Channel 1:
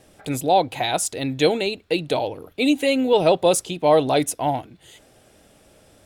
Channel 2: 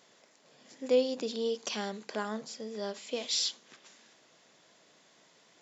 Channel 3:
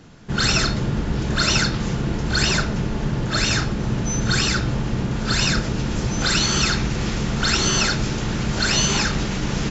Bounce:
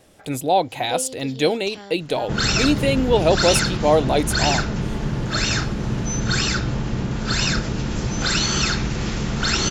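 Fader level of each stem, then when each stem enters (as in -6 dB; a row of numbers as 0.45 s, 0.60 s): -0.5 dB, -4.0 dB, -1.0 dB; 0.00 s, 0.00 s, 2.00 s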